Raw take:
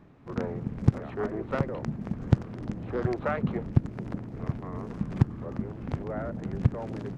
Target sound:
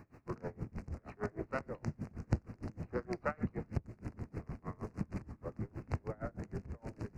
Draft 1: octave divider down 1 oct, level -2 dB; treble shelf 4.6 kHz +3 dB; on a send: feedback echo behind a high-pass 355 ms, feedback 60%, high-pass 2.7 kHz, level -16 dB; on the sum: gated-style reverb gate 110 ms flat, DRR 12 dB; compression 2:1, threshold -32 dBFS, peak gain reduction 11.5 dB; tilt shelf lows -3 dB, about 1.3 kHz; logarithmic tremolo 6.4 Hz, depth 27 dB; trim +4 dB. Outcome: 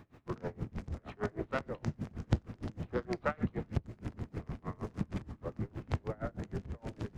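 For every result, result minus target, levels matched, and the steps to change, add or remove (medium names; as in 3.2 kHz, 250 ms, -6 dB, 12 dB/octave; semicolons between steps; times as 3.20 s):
4 kHz band +6.0 dB; compression: peak gain reduction -3 dB
add after compression: Butterworth band-stop 3.4 kHz, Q 1.9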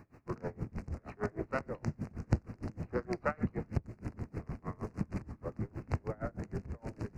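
compression: peak gain reduction -3 dB
change: compression 2:1, threshold -38 dBFS, peak gain reduction 14.5 dB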